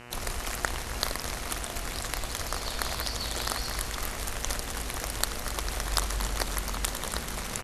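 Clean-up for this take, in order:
hum removal 120.8 Hz, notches 25
echo removal 269 ms −15.5 dB

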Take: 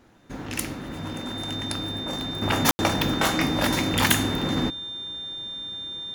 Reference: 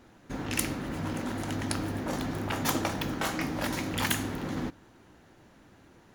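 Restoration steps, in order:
notch filter 3,600 Hz, Q 30
ambience match 0:02.71–0:02.79
level 0 dB, from 0:02.42 −8 dB

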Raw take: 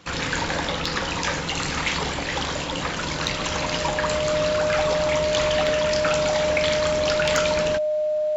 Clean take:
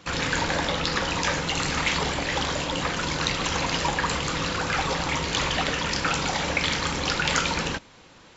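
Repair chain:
clipped peaks rebuilt −9.5 dBFS
notch filter 610 Hz, Q 30

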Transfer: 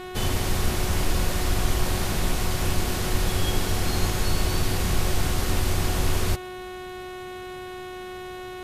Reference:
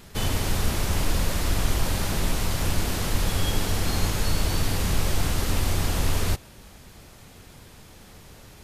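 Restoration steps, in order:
hum removal 366.7 Hz, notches 11

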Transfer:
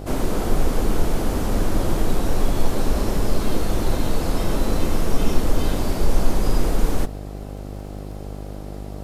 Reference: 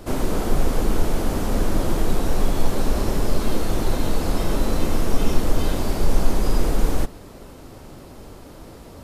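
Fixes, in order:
click removal
hum removal 50.2 Hz, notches 16

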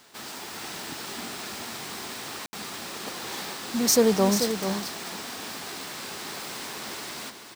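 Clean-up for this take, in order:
ambience match 0:02.46–0:02.53
echo removal 437 ms −8.5 dB

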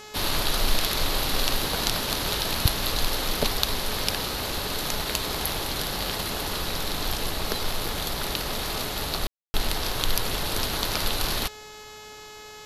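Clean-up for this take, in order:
hum removal 425.2 Hz, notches 18
ambience match 0:09.27–0:09.54

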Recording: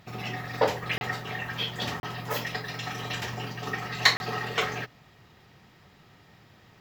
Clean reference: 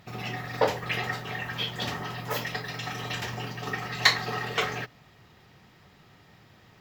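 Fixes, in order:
repair the gap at 0:00.98/0:02.00/0:04.17, 31 ms

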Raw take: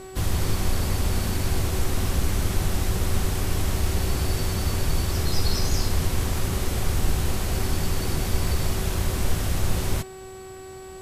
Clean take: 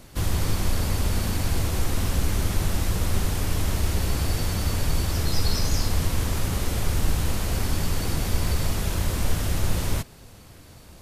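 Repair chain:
hum removal 378.3 Hz, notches 14
notch filter 7,800 Hz, Q 30

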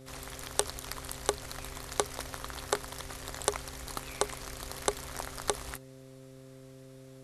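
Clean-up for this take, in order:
hum removal 131.9 Hz, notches 4
notch filter 660 Hz, Q 30

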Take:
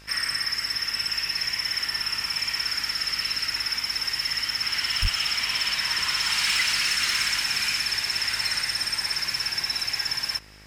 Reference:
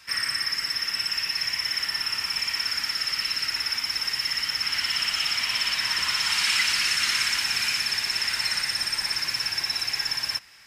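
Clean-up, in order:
clipped peaks rebuilt −16.5 dBFS
hum removal 51.7 Hz, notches 28
0:05.01–0:05.13: high-pass filter 140 Hz 24 dB per octave

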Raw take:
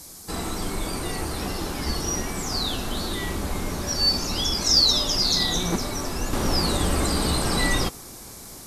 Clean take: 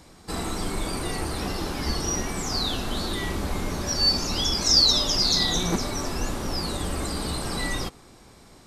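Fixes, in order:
clipped peaks rebuilt −8 dBFS
noise reduction from a noise print 9 dB
level correction −6 dB, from 0:06.33

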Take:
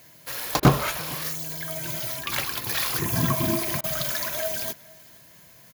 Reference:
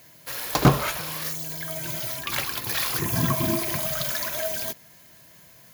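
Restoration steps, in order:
repair the gap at 0:00.60/0:03.81, 27 ms
echo removal 459 ms −24 dB

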